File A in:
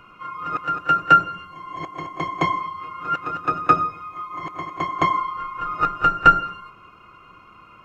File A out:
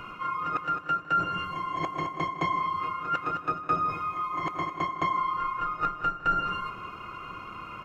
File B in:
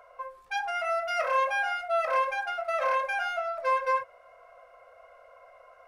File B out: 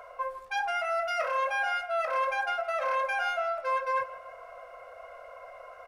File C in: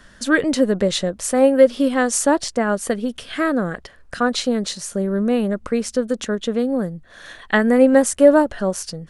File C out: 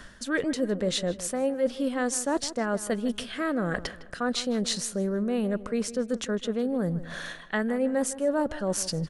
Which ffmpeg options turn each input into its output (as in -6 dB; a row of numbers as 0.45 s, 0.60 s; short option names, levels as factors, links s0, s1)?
-filter_complex "[0:a]areverse,acompressor=threshold=0.0178:ratio=4,areverse,asplit=2[s0][s1];[s1]adelay=157,lowpass=f=2700:p=1,volume=0.178,asplit=2[s2][s3];[s3]adelay=157,lowpass=f=2700:p=1,volume=0.41,asplit=2[s4][s5];[s5]adelay=157,lowpass=f=2700:p=1,volume=0.41,asplit=2[s6][s7];[s7]adelay=157,lowpass=f=2700:p=1,volume=0.41[s8];[s0][s2][s4][s6][s8]amix=inputs=5:normalize=0,volume=2.24"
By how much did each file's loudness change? -8.5 LU, -1.5 LU, -10.0 LU